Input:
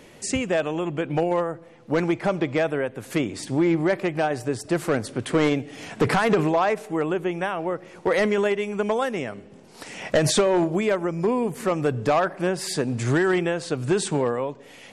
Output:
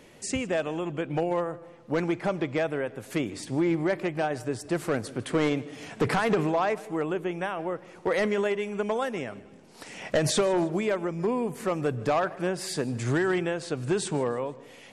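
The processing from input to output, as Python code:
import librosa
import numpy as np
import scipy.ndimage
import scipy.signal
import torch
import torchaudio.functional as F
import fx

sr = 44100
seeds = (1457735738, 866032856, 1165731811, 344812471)

y = fx.echo_feedback(x, sr, ms=155, feedback_pct=46, wet_db=-21.0)
y = y * librosa.db_to_amplitude(-4.5)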